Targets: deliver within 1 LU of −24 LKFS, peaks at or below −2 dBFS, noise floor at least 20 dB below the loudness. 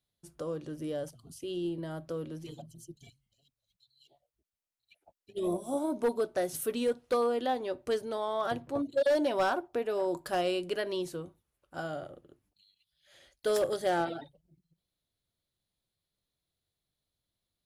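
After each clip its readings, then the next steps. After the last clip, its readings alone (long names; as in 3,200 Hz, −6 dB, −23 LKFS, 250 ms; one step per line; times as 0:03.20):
share of clipped samples 0.5%; peaks flattened at −22.0 dBFS; integrated loudness −32.5 LKFS; sample peak −22.0 dBFS; target loudness −24.0 LKFS
→ clipped peaks rebuilt −22 dBFS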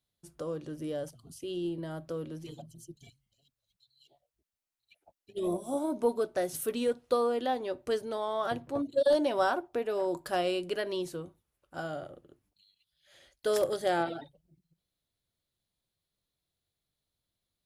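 share of clipped samples 0.0%; integrated loudness −32.0 LKFS; sample peak −15.0 dBFS; target loudness −24.0 LKFS
→ level +8 dB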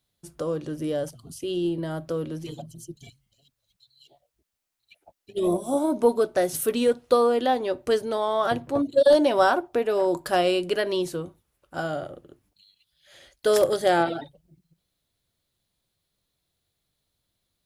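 integrated loudness −24.0 LKFS; sample peak −7.0 dBFS; background noise floor −79 dBFS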